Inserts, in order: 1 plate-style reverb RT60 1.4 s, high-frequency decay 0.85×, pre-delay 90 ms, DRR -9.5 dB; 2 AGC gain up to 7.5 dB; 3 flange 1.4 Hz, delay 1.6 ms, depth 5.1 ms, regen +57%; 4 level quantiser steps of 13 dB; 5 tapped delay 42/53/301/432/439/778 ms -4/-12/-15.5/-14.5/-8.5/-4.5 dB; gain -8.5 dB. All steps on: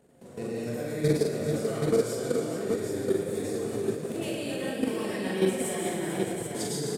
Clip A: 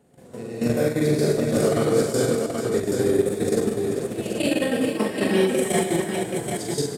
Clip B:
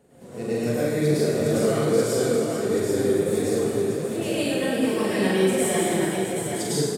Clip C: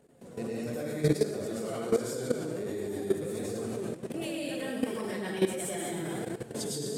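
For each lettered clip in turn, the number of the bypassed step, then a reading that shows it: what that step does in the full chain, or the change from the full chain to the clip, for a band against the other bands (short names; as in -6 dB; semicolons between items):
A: 3, crest factor change -3.5 dB; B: 4, crest factor change -4.0 dB; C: 5, crest factor change +2.5 dB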